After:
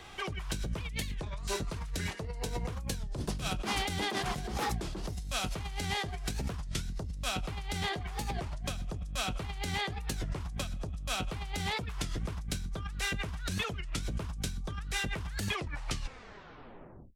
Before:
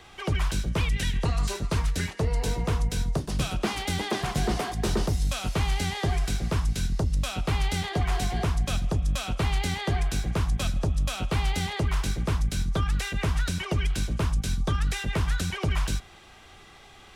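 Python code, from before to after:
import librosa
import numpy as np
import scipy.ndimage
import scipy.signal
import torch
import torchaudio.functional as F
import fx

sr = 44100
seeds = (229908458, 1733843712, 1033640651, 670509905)

y = fx.tape_stop_end(x, sr, length_s=1.57)
y = fx.over_compress(y, sr, threshold_db=-31.0, ratio=-1.0)
y = fx.record_warp(y, sr, rpm=33.33, depth_cents=250.0)
y = F.gain(torch.from_numpy(y), -4.5).numpy()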